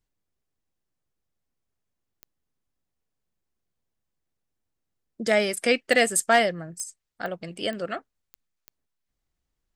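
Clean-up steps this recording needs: clip repair -10 dBFS; de-click

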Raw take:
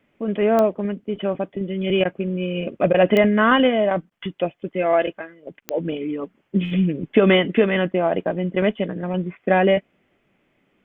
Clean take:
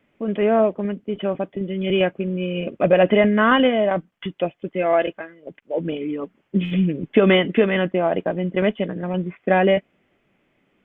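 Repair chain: de-click; interpolate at 2.04/2.93/4.1, 10 ms

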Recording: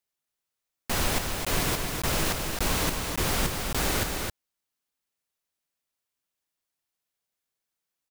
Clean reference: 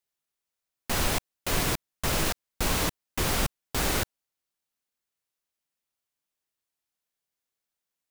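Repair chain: inverse comb 0.265 s -5 dB

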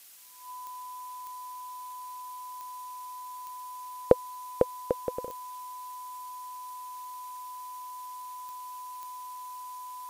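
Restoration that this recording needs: de-click; notch 1000 Hz, Q 30; denoiser 30 dB, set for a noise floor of -42 dBFS

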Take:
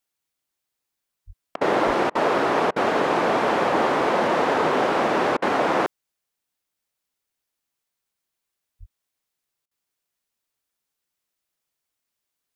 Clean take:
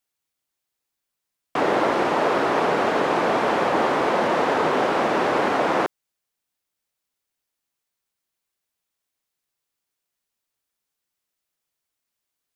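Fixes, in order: 1.26–1.38 HPF 140 Hz 24 dB/oct; 1.86–1.98 HPF 140 Hz 24 dB/oct; 8.79–8.91 HPF 140 Hz 24 dB/oct; interpolate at 1.56/2.1/2.71/5.37/9.66, 50 ms

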